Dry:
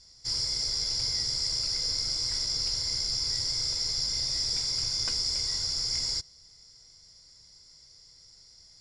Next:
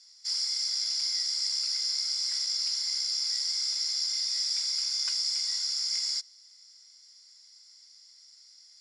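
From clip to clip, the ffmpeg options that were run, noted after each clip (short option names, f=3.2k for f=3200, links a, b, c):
-af "highpass=1.5k"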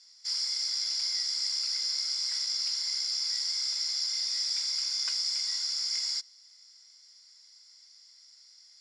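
-af "highshelf=f=6.1k:g=-7.5,volume=2dB"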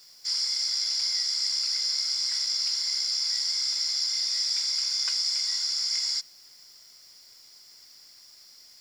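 -af "acrusher=bits=9:mix=0:aa=0.000001,volume=3.5dB"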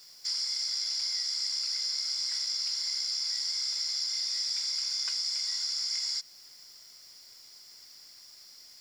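-af "acompressor=threshold=-32dB:ratio=2"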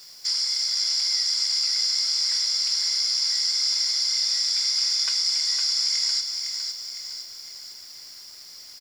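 -af "aecho=1:1:508|1016|1524|2032|2540|3048:0.501|0.251|0.125|0.0626|0.0313|0.0157,volume=7dB"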